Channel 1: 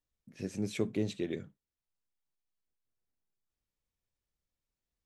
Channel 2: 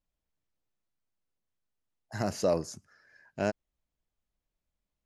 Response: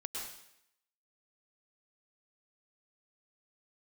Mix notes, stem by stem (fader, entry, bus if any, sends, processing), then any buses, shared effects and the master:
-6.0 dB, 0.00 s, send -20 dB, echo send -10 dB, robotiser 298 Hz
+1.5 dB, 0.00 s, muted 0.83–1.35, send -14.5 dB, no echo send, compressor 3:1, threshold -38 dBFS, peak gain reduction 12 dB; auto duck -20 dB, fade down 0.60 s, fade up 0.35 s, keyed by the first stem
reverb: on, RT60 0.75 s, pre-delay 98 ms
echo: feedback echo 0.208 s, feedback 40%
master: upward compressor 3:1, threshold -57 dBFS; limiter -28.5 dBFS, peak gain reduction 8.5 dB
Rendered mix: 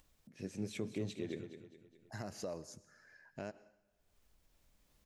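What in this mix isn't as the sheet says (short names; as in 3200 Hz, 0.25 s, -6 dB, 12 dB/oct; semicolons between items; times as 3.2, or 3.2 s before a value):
stem 1: missing robotiser 298 Hz; stem 2 +1.5 dB -> -6.0 dB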